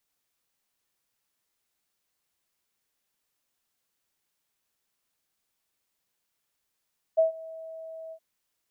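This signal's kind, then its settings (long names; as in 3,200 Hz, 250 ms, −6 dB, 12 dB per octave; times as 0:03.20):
note with an ADSR envelope sine 647 Hz, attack 20 ms, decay 127 ms, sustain −22 dB, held 0.95 s, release 70 ms −16 dBFS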